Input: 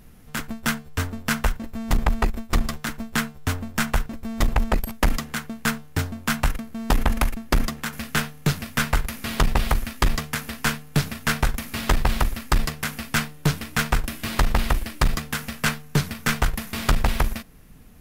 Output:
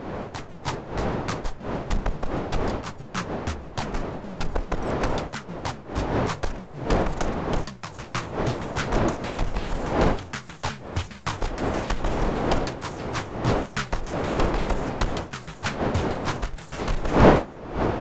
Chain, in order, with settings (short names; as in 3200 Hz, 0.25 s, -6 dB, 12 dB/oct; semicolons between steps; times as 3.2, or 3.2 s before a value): repeated pitch sweeps -10.5 st, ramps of 0.382 s; wind noise 620 Hz -23 dBFS; downsampling 16000 Hz; gain -5 dB